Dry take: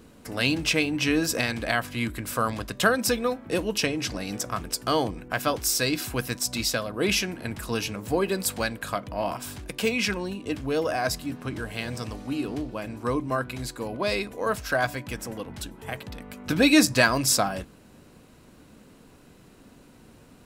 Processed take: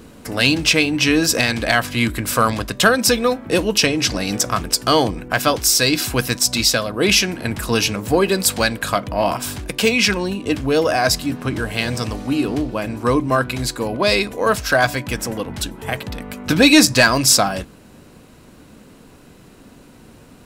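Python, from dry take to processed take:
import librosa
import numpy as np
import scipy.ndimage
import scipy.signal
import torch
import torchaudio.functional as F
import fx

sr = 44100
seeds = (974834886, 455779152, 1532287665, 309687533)

p1 = fx.dynamic_eq(x, sr, hz=4800.0, q=0.75, threshold_db=-40.0, ratio=4.0, max_db=4)
p2 = fx.rider(p1, sr, range_db=3, speed_s=0.5)
p3 = p1 + (p2 * 10.0 ** (-1.0 / 20.0))
p4 = 10.0 ** (-4.0 / 20.0) * np.tanh(p3 / 10.0 ** (-4.0 / 20.0))
y = p4 * 10.0 ** (3.0 / 20.0)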